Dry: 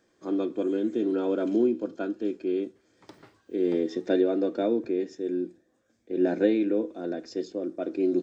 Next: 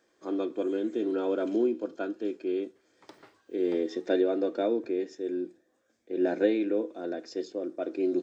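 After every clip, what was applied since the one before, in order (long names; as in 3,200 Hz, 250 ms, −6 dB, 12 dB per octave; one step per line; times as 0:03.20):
bass and treble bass −11 dB, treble −1 dB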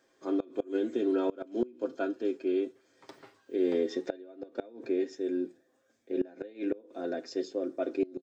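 comb filter 7.5 ms, depth 46%
gate with flip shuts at −18 dBFS, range −24 dB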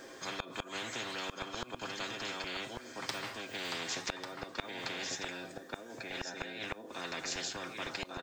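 single-tap delay 1,144 ms −10.5 dB
every bin compressed towards the loudest bin 10 to 1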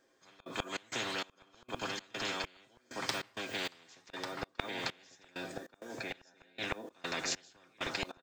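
gate pattern "...xx.xx" 98 BPM −24 dB
level +3 dB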